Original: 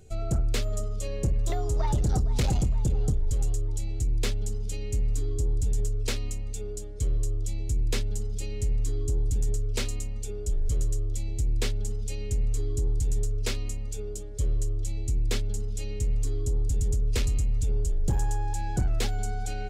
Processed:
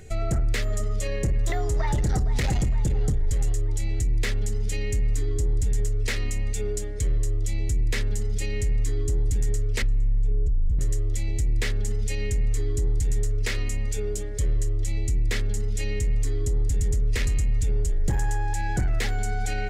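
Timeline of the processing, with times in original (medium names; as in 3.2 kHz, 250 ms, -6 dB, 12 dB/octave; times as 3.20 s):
9.82–10.79 s: tilt EQ -4.5 dB/octave
whole clip: peaking EQ 1.9 kHz +13.5 dB 0.52 oct; de-hum 124.9 Hz, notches 14; peak limiter -25.5 dBFS; trim +7.5 dB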